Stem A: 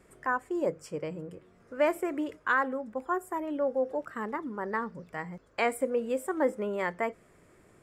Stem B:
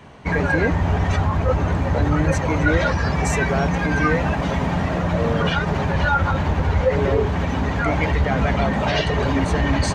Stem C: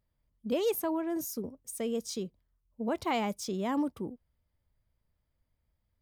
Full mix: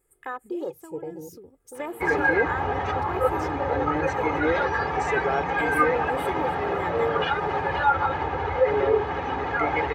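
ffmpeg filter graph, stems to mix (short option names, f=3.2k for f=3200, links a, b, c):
-filter_complex "[0:a]afwtdn=0.0158,aexciter=amount=12.8:drive=6:freq=8k,volume=-0.5dB[a];[1:a]bandpass=f=970:t=q:w=0.58:csg=0,adelay=1750,volume=-1dB[b];[2:a]acompressor=threshold=-40dB:ratio=6,volume=-2.5dB[c];[a][c]amix=inputs=2:normalize=0,equalizer=f=16k:t=o:w=0.23:g=8.5,acompressor=threshold=-31dB:ratio=2,volume=0dB[d];[b][d]amix=inputs=2:normalize=0,highshelf=f=8.4k:g=-9,aecho=1:1:2.4:0.65"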